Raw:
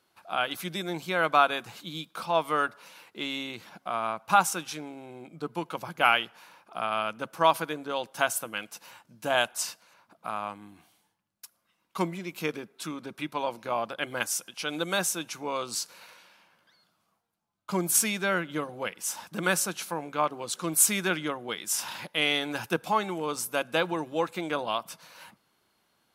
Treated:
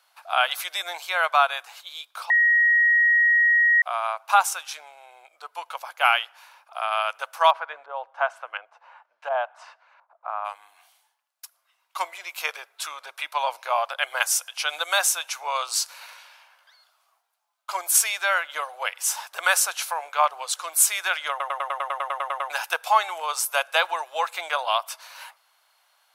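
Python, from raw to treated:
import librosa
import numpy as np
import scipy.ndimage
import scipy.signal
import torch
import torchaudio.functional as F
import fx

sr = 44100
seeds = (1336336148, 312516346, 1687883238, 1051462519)

y = fx.filter_lfo_lowpass(x, sr, shape='saw_up', hz=1.4, low_hz=770.0, high_hz=2200.0, q=0.81, at=(7.5, 10.44), fade=0.02)
y = fx.edit(y, sr, fx.bleep(start_s=2.3, length_s=1.52, hz=1890.0, db=-16.5),
    fx.stutter_over(start_s=21.3, slice_s=0.1, count=12), tone=tone)
y = scipy.signal.sosfilt(scipy.signal.butter(6, 640.0, 'highpass', fs=sr, output='sos'), y)
y = fx.rider(y, sr, range_db=3, speed_s=0.5)
y = F.gain(torch.from_numpy(y), 4.5).numpy()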